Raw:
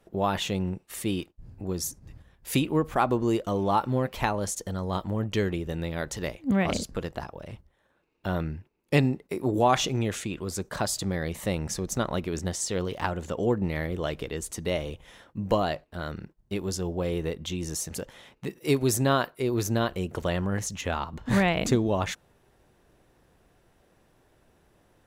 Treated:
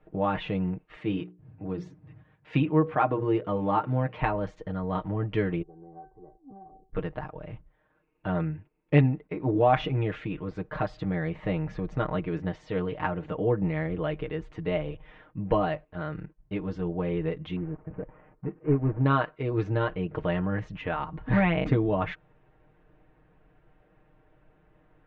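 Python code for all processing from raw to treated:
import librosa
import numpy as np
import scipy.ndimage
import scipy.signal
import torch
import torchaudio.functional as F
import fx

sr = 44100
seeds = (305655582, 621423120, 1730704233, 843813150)

y = fx.chain(x, sr, fx.highpass(hz=84.0, slope=24),
    fx.hum_notches(base_hz=60, count=9), at=(0.96, 4.22))
y = fx.chain(y, sr, fx.ellip_lowpass(hz=990.0, order=4, stop_db=60),
    fx.stiff_resonator(f0_hz=380.0, decay_s=0.26, stiffness=0.002),
    fx.band_squash(depth_pct=100), at=(5.62, 6.93))
y = fx.chain(y, sr, fx.cvsd(bps=16000),
    fx.lowpass(hz=1000.0, slope=12), at=(17.56, 19.06))
y = scipy.signal.sosfilt(scipy.signal.butter(4, 2600.0, 'lowpass', fs=sr, output='sos'), y)
y = fx.low_shelf(y, sr, hz=74.0, db=7.0)
y = y + 0.81 * np.pad(y, (int(6.5 * sr / 1000.0), 0))[:len(y)]
y = y * librosa.db_to_amplitude(-2.5)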